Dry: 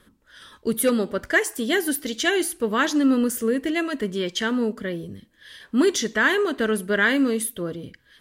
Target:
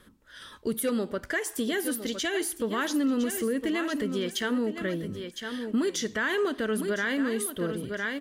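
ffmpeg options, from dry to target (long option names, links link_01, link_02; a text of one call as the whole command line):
ffmpeg -i in.wav -filter_complex "[0:a]asplit=2[link_01][link_02];[link_02]aecho=0:1:1008|2016:0.251|0.0402[link_03];[link_01][link_03]amix=inputs=2:normalize=0,alimiter=limit=-19.5dB:level=0:latency=1:release=244" out.wav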